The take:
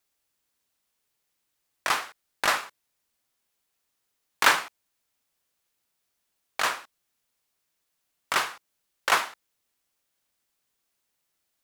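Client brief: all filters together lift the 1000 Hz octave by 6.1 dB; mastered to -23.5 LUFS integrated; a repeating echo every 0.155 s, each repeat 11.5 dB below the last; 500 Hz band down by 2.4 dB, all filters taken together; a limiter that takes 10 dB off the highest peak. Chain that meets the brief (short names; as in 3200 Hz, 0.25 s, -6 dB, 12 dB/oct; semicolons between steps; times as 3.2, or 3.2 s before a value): bell 500 Hz -7.5 dB; bell 1000 Hz +9 dB; limiter -10 dBFS; feedback echo 0.155 s, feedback 27%, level -11.5 dB; gain +3 dB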